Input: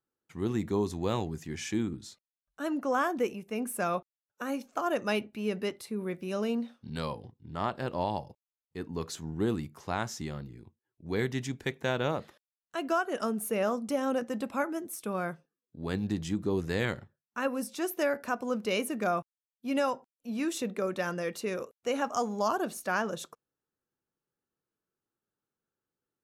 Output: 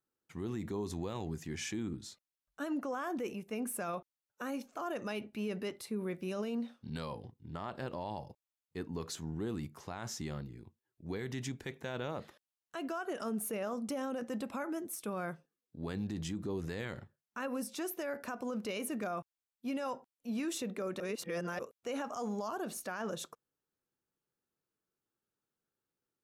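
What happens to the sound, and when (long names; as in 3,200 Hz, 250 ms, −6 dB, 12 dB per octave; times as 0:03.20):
0:21.00–0:21.59: reverse
whole clip: brickwall limiter −28 dBFS; level −1.5 dB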